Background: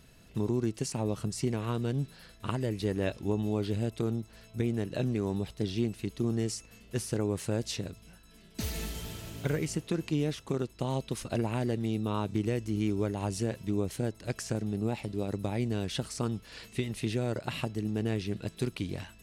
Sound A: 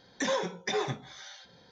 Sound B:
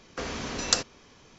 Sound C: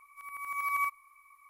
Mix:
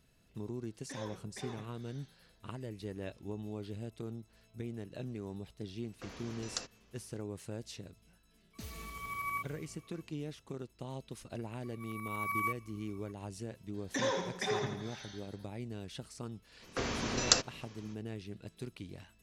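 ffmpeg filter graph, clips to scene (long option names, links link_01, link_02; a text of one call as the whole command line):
ffmpeg -i bed.wav -i cue0.wav -i cue1.wav -i cue2.wav -filter_complex "[1:a]asplit=2[link_01][link_02];[2:a]asplit=2[link_03][link_04];[3:a]asplit=2[link_05][link_06];[0:a]volume=-11.5dB[link_07];[link_02]aecho=1:1:83|166|249|332|415|498:0.447|0.214|0.103|0.0494|0.0237|0.0114[link_08];[link_01]atrim=end=1.71,asetpts=PTS-STARTPTS,volume=-16dB,afade=type=in:duration=0.004:curve=hsin,afade=type=out:start_time=1.706:duration=0.004:curve=hsin,adelay=690[link_09];[link_03]atrim=end=1.38,asetpts=PTS-STARTPTS,volume=-15.5dB,afade=type=in:duration=0.004:curve=hsin,afade=type=out:start_time=1.376:duration=0.004:curve=hsin,adelay=5840[link_10];[link_05]atrim=end=1.49,asetpts=PTS-STARTPTS,volume=-7dB,afade=type=in:duration=0.004:curve=hsin,afade=type=out:start_time=1.486:duration=0.004:curve=hsin,adelay=8530[link_11];[link_06]atrim=end=1.49,asetpts=PTS-STARTPTS,volume=-4dB,afade=type=in:duration=0.004:curve=hsin,afade=type=out:start_time=1.486:duration=0.004:curve=hsin,adelay=11630[link_12];[link_08]atrim=end=1.71,asetpts=PTS-STARTPTS,volume=-4.5dB,afade=type=in:duration=0.004:curve=hsin,afade=type=out:start_time=1.706:duration=0.004:curve=hsin,adelay=13740[link_13];[link_04]atrim=end=1.38,asetpts=PTS-STARTPTS,volume=-2dB,afade=type=in:duration=0.05,afade=type=out:start_time=1.33:duration=0.05,adelay=16590[link_14];[link_07][link_09][link_10][link_11][link_12][link_13][link_14]amix=inputs=7:normalize=0" out.wav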